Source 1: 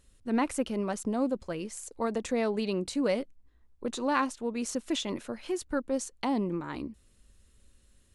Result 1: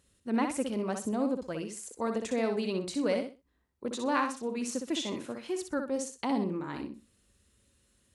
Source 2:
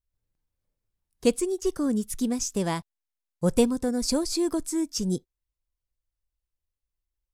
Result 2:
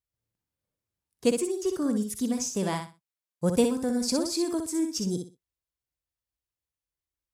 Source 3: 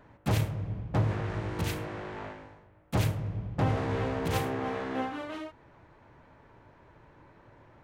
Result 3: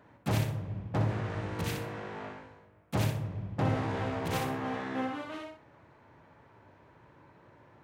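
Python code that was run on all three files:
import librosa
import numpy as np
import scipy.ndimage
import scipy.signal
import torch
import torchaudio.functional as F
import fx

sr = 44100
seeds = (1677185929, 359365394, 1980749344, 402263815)

y = scipy.signal.sosfilt(scipy.signal.butter(2, 85.0, 'highpass', fs=sr, output='sos'), x)
y = fx.echo_feedback(y, sr, ms=62, feedback_pct=23, wet_db=-6.0)
y = y * librosa.db_to_amplitude(-2.0)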